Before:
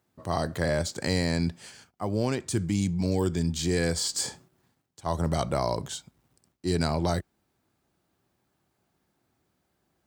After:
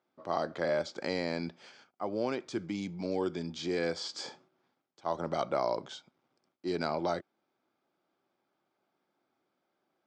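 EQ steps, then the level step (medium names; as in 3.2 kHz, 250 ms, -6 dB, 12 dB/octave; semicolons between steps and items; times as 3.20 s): cabinet simulation 390–4300 Hz, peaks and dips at 440 Hz -4 dB, 700 Hz -3 dB, 1 kHz -5 dB, 1.8 kHz -9 dB, 2.8 kHz -8 dB, 4.1 kHz -8 dB; +1.5 dB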